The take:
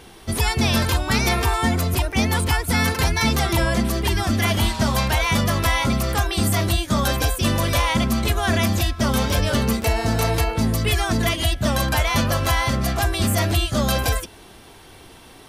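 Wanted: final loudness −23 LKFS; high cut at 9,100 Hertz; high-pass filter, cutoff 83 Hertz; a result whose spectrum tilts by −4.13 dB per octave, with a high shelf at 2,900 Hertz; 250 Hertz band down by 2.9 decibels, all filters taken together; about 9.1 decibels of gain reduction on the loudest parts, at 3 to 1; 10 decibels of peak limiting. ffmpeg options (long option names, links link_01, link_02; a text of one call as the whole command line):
ffmpeg -i in.wav -af "highpass=83,lowpass=9100,equalizer=frequency=250:width_type=o:gain=-3.5,highshelf=frequency=2900:gain=8,acompressor=threshold=-28dB:ratio=3,volume=8dB,alimiter=limit=-13.5dB:level=0:latency=1" out.wav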